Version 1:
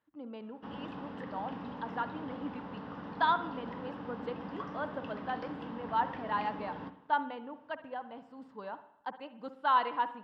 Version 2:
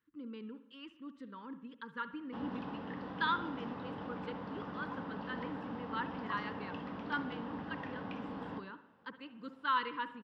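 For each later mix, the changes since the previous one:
speech: add Butterworth band-stop 710 Hz, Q 1; background: entry +1.70 s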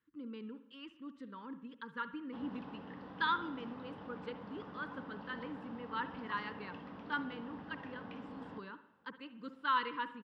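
background -6.0 dB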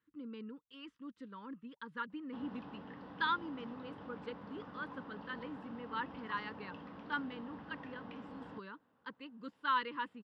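reverb: off

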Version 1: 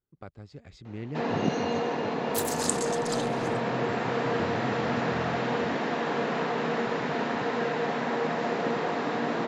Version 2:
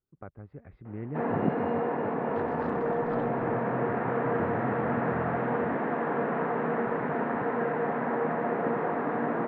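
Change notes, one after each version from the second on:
master: add low-pass 1.8 kHz 24 dB/octave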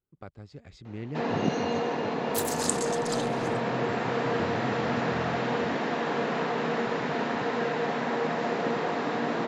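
master: remove low-pass 1.8 kHz 24 dB/octave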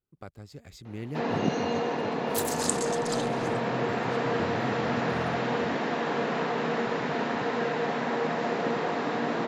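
speech: remove distance through air 120 m

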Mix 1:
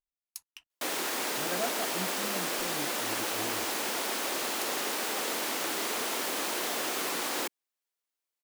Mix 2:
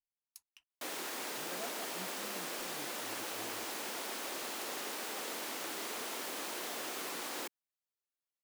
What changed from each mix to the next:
speech -12.0 dB; background -8.5 dB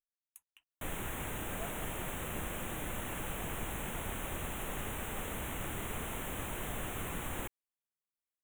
background: remove high-pass 280 Hz 24 dB/octave; master: add Butterworth band-stop 4.9 kHz, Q 1.2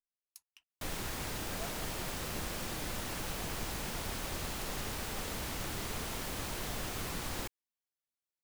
master: remove Butterworth band-stop 4.9 kHz, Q 1.2

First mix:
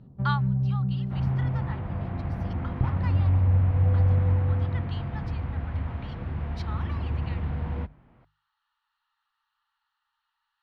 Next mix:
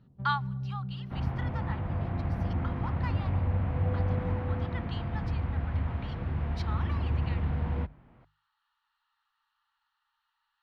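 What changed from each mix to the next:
first sound -10.0 dB; reverb: on, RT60 2.0 s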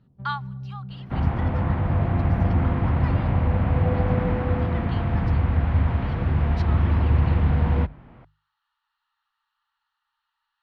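second sound +10.0 dB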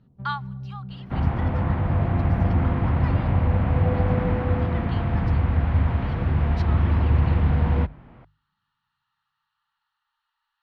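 first sound: send on

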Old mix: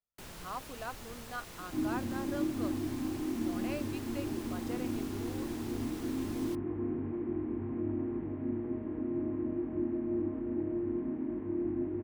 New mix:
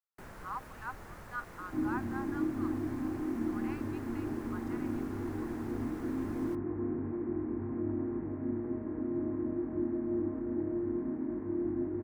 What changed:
speech: add brick-wall FIR high-pass 760 Hz; master: add resonant high shelf 2.3 kHz -10 dB, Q 1.5

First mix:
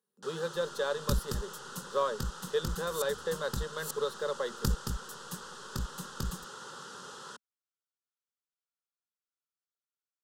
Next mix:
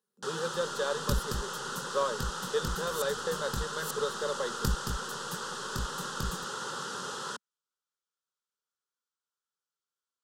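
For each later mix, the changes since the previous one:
first sound +8.5 dB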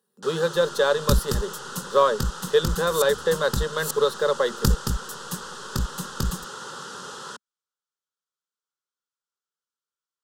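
speech +11.5 dB; second sound +9.5 dB

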